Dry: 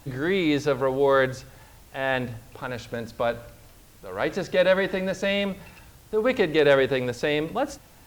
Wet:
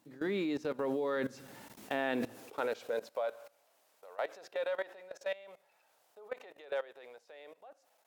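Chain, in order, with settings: Doppler pass-by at 2.2, 8 m/s, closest 3.1 m; high-pass sweep 230 Hz -> 640 Hz, 1.83–3.34; level quantiser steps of 19 dB; gain +5 dB

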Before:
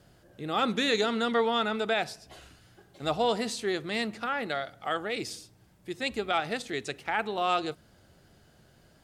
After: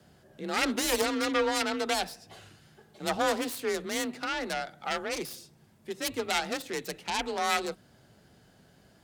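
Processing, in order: self-modulated delay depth 0.27 ms; frequency shift +35 Hz

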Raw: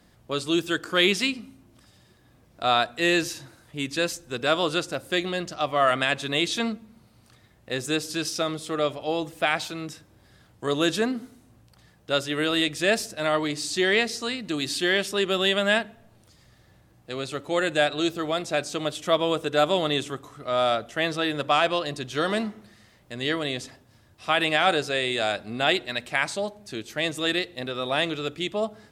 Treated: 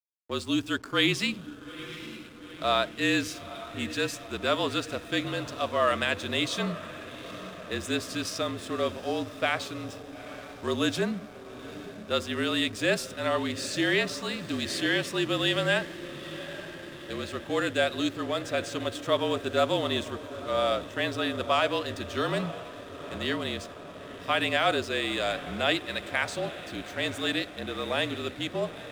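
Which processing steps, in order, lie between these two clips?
diffused feedback echo 0.878 s, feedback 69%, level -13.5 dB; backlash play -39.5 dBFS; frequency shift -42 Hz; gain -3.5 dB

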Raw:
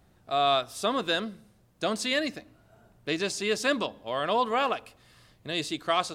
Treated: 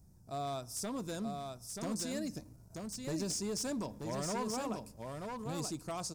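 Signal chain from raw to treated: EQ curve 160 Hz 0 dB, 370 Hz -10 dB, 3500 Hz -26 dB, 5300 Hz -1 dB; 2.35–4.51 sample leveller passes 1; compressor 6:1, threshold -36 dBFS, peak gain reduction 5.5 dB; small resonant body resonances 940/2400/3500 Hz, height 8 dB, ringing for 30 ms; wavefolder -33.5 dBFS; echo 0.932 s -4.5 dB; gain +2 dB

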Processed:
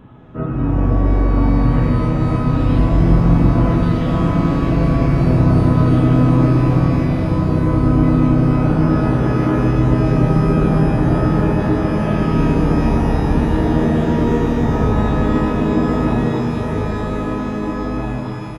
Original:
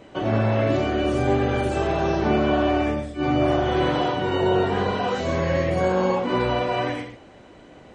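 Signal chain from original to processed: echo 0.819 s -3 dB; speed mistake 78 rpm record played at 33 rpm; shimmer reverb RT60 3.7 s, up +12 st, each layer -8 dB, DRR 4 dB; gain +4 dB

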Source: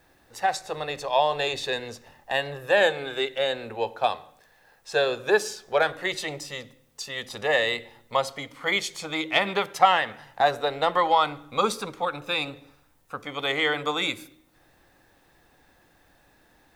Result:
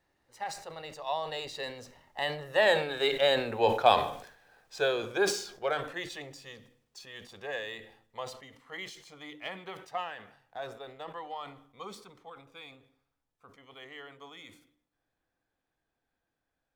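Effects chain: median filter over 3 samples; Doppler pass-by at 3.62, 19 m/s, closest 11 m; sustainer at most 91 dB/s; gain +2 dB

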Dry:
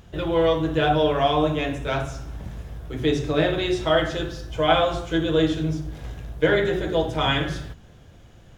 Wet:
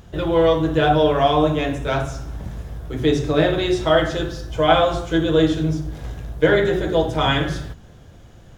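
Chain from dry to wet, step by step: bell 2600 Hz -3.5 dB 0.93 oct; gain +4 dB

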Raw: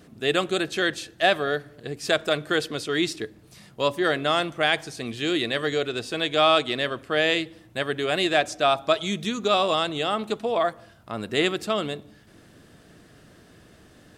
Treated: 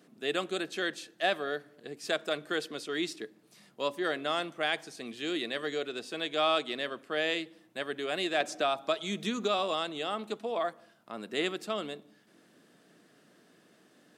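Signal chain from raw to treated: HPF 180 Hz 24 dB/oct; 8.4–9.59 three-band squash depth 70%; gain -8.5 dB

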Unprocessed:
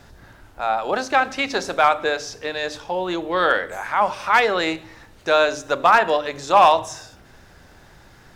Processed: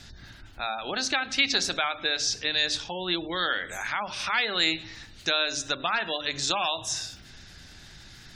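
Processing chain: compressor 2.5:1, threshold -23 dBFS, peak gain reduction 9.5 dB; high shelf 2400 Hz +5.5 dB; spectral gate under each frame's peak -30 dB strong; graphic EQ 500/1000/4000 Hz -9/-8/+6 dB

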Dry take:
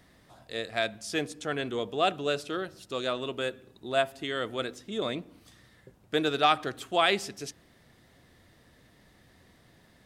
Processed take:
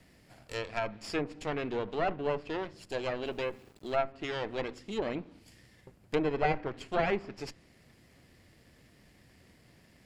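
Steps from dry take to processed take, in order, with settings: minimum comb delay 0.4 ms; treble ducked by the level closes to 1500 Hz, closed at -27.5 dBFS; 3.26–4.01 sample gate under -57 dBFS

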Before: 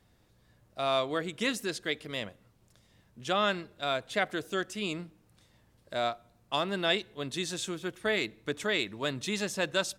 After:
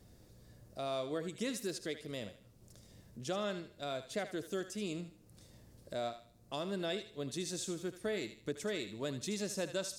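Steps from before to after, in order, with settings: compressor 1.5:1, threshold -60 dBFS, peak gain reduction 13 dB; band shelf 1700 Hz -8.5 dB 2.5 oct; thinning echo 77 ms, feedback 36%, high-pass 880 Hz, level -9 dB; gain +6.5 dB

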